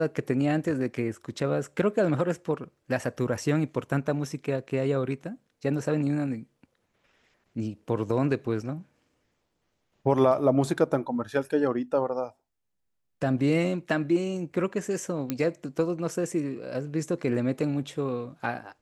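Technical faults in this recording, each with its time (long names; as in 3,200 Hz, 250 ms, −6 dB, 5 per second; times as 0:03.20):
0:15.30: click −14 dBFS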